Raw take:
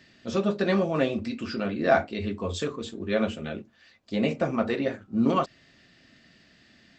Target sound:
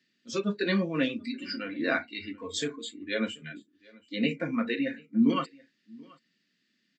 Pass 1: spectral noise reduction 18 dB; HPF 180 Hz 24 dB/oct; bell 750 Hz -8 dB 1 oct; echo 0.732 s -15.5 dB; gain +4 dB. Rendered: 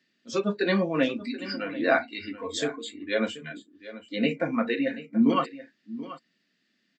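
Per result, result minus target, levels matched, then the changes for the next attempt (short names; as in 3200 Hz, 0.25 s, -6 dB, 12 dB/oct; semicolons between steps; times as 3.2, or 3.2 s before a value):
echo-to-direct +9.5 dB; 1000 Hz band +3.5 dB
change: echo 0.732 s -25 dB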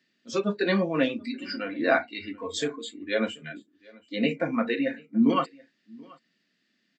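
1000 Hz band +3.5 dB
change: bell 750 Hz -20 dB 1 oct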